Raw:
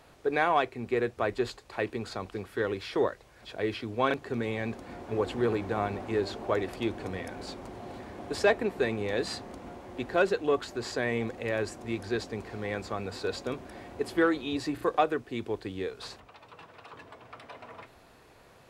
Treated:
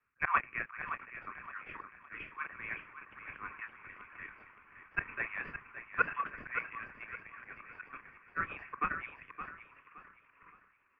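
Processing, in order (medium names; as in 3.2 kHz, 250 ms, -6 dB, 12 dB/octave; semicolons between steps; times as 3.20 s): steep high-pass 1.1 kHz 48 dB/octave; doubling 43 ms -8 dB; tempo 1.7×; in parallel at -11.5 dB: decimation with a swept rate 34×, swing 160% 2.4 Hz; on the sum: slow attack 114 ms; elliptic low-pass 2.5 kHz, stop band 40 dB; on a send: feedback delay 568 ms, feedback 49%, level -6.5 dB; on the sum: three bands expanded up and down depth 70%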